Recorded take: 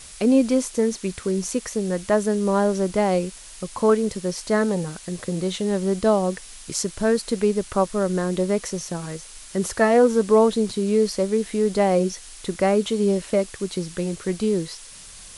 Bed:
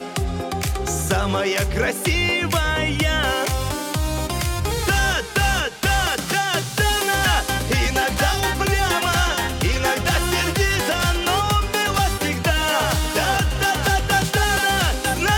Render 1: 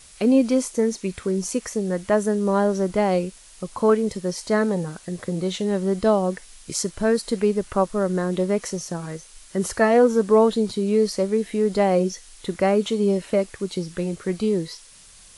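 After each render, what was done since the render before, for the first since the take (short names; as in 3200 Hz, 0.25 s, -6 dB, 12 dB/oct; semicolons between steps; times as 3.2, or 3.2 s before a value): noise print and reduce 6 dB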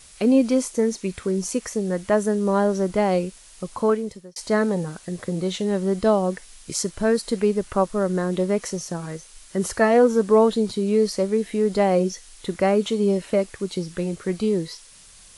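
3.75–4.36 fade out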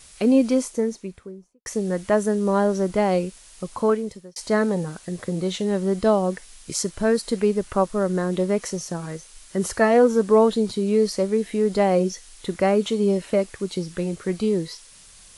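0.45–1.66 studio fade out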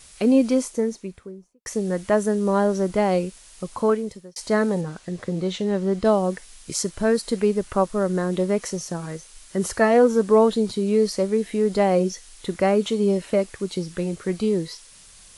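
4.81–6.05 air absorption 56 m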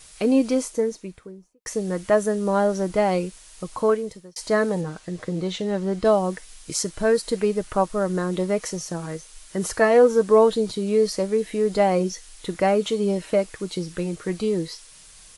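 bell 170 Hz -3 dB 0.85 oct; comb 6.4 ms, depth 33%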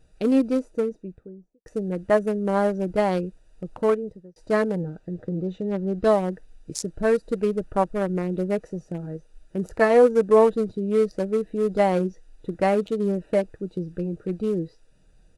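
Wiener smoothing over 41 samples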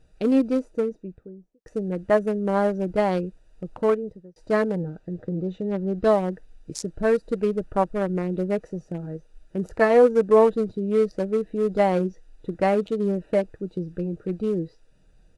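high shelf 8500 Hz -8 dB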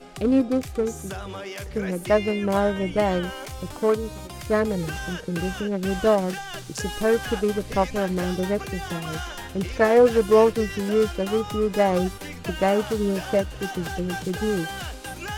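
add bed -14 dB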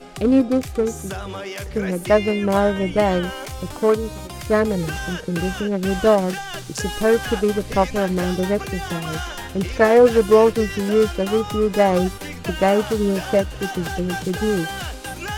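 gain +4 dB; limiter -3 dBFS, peak gain reduction 2.5 dB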